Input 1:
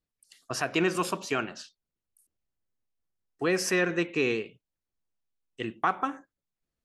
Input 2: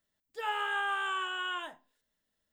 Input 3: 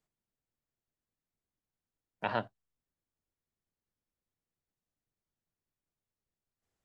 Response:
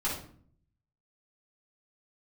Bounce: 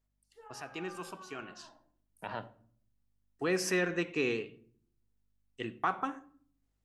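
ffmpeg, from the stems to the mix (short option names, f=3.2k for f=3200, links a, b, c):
-filter_complex "[0:a]acontrast=61,volume=-11.5dB,afade=t=in:st=1.38:d=0.38:silence=0.316228,asplit=2[a][b];[b]volume=-19dB[c];[1:a]lowpass=1.1k,alimiter=level_in=11.5dB:limit=-24dB:level=0:latency=1,volume=-11.5dB,volume=-15.5dB,asplit=2[d][e];[e]volume=-6.5dB[f];[2:a]alimiter=limit=-21.5dB:level=0:latency=1:release=54,aeval=exprs='val(0)+0.000141*(sin(2*PI*50*n/s)+sin(2*PI*2*50*n/s)/2+sin(2*PI*3*50*n/s)/3+sin(2*PI*4*50*n/s)/4+sin(2*PI*5*50*n/s)/5)':c=same,volume=-4.5dB,asplit=2[g][h];[h]volume=-18.5dB[i];[3:a]atrim=start_sample=2205[j];[c][f][i]amix=inputs=3:normalize=0[k];[k][j]afir=irnorm=-1:irlink=0[l];[a][d][g][l]amix=inputs=4:normalize=0"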